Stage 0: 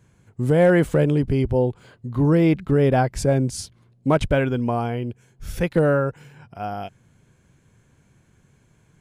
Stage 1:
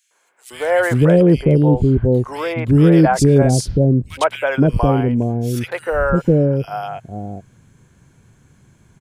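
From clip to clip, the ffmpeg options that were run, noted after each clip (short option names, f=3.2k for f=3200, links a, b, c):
-filter_complex "[0:a]acrossover=split=540|2400[a][b][c];[b]adelay=110[d];[a]adelay=520[e];[e][d][c]amix=inputs=3:normalize=0,volume=7dB"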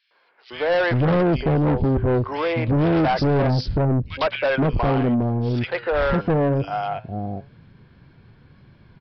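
-af "flanger=delay=1.7:depth=8.8:regen=86:speed=0.23:shape=sinusoidal,aresample=11025,asoftclip=type=tanh:threshold=-22dB,aresample=44100,volume=6dB"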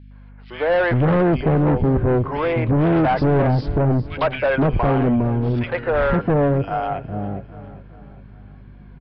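-af "aeval=exprs='val(0)+0.00708*(sin(2*PI*50*n/s)+sin(2*PI*2*50*n/s)/2+sin(2*PI*3*50*n/s)/3+sin(2*PI*4*50*n/s)/4+sin(2*PI*5*50*n/s)/5)':c=same,lowpass=2.5k,aecho=1:1:405|810|1215|1620:0.158|0.0792|0.0396|0.0198,volume=2dB"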